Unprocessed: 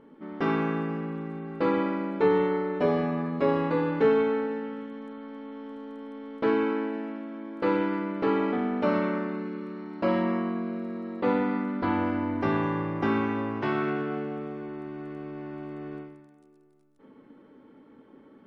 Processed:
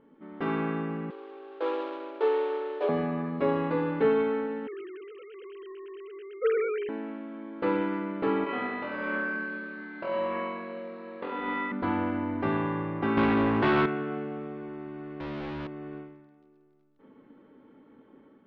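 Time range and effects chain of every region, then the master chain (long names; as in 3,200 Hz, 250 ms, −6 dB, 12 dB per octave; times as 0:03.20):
0:01.10–0:02.89: running median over 25 samples + Butterworth high-pass 350 Hz 48 dB per octave + notch filter 2,000 Hz, Q 13
0:04.67–0:06.89: three sine waves on the formant tracks + low-pass with resonance 3,000 Hz, resonance Q 2.8 + notch filter 1,200 Hz, Q 10
0:08.44–0:11.72: high-pass filter 440 Hz 6 dB per octave + compressor whose output falls as the input rises −32 dBFS + flutter between parallel walls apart 4 metres, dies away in 1.2 s
0:13.17–0:13.86: high-pass filter 60 Hz + leveller curve on the samples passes 3
0:15.20–0:15.67: low-shelf EQ 190 Hz +7.5 dB + leveller curve on the samples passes 5 + hard clipping −33 dBFS
whole clip: low-pass filter 3,900 Hz 24 dB per octave; automatic gain control gain up to 4 dB; level −6 dB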